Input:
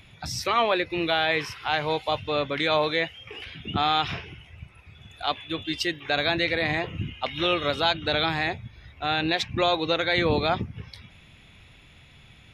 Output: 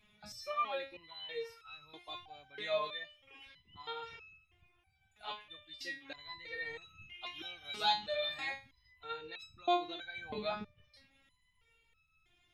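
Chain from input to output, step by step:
0:06.81–0:09.03: high-shelf EQ 2,200 Hz +10.5 dB
step-sequenced resonator 3.1 Hz 210–1,300 Hz
level −1.5 dB

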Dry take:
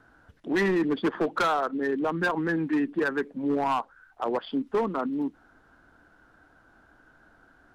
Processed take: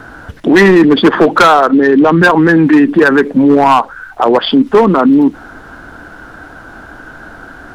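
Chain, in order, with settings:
0:01.70–0:02.22: low-pass filter 6,500 Hz 24 dB per octave
boost into a limiter +27 dB
level −1 dB

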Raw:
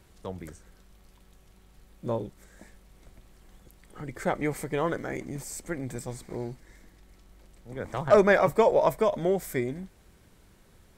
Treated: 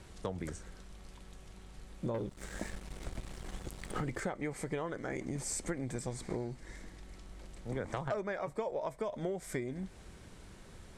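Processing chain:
low-pass filter 10,000 Hz 24 dB per octave
0:02.14–0:04.20: leveller curve on the samples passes 2
downward compressor 16 to 1, threshold −38 dBFS, peak gain reduction 25.5 dB
level +5 dB

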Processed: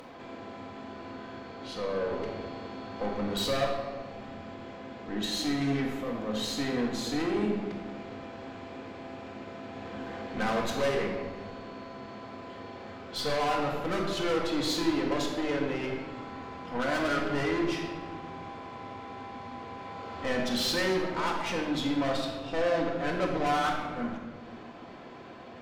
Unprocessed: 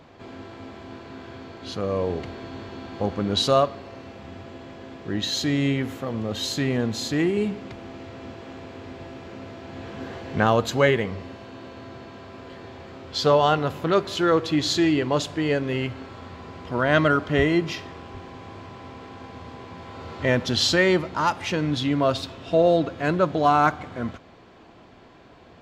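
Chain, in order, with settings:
high-pass filter 280 Hz 6 dB per octave
high-shelf EQ 2,400 Hz −4.5 dB
upward compression, threshold −38 dBFS
tube saturation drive 27 dB, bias 0.55
rectangular room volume 1,100 cubic metres, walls mixed, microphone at 2 metres
level −2 dB

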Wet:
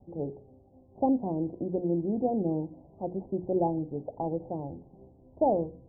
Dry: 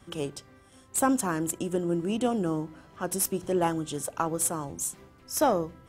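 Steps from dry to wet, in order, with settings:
Butterworth low-pass 840 Hz 72 dB per octave
mains-hum notches 60/120/180/240/300/360/420/480 Hz

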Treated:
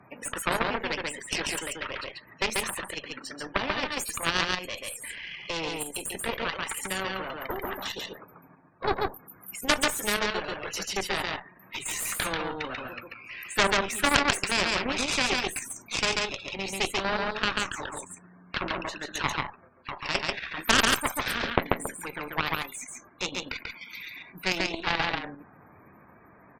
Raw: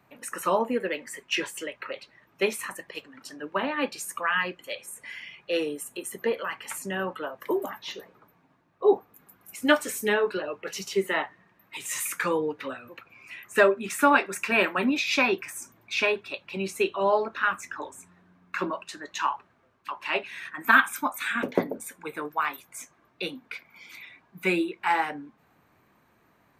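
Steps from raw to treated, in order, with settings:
spectral peaks only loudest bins 64
harmonic generator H 4 −9 dB, 7 −23 dB, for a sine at −4 dBFS
output level in coarse steps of 9 dB
on a send: single-tap delay 139 ms −4 dB
on the sum: every bin compressed towards the loudest bin 2 to 1

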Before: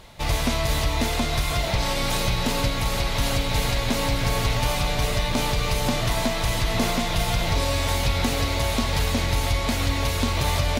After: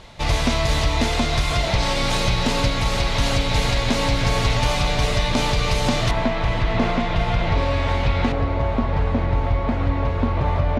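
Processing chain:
low-pass filter 7,000 Hz 12 dB per octave, from 0:06.11 2,400 Hz, from 0:08.32 1,300 Hz
level +3.5 dB

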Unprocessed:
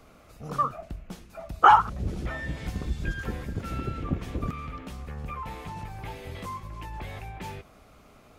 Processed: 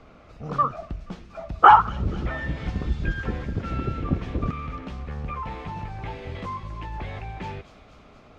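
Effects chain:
high-frequency loss of the air 160 metres
delay with a high-pass on its return 239 ms, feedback 67%, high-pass 4,400 Hz, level −6 dB
level +4.5 dB

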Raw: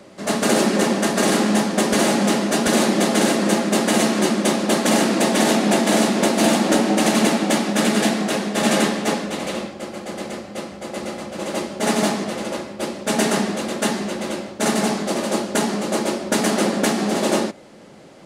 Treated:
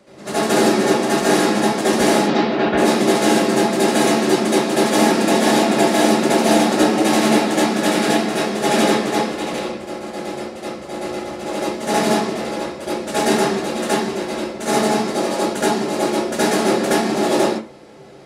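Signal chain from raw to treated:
0:02.19–0:02.77: low-pass filter 5,500 Hz → 2,800 Hz 24 dB per octave
convolution reverb RT60 0.35 s, pre-delay 67 ms, DRR −10 dB
level −8 dB

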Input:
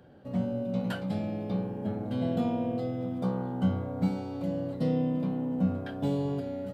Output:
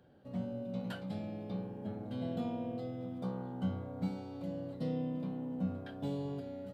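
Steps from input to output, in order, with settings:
parametric band 3,800 Hz +3 dB 0.68 octaves
level −8.5 dB

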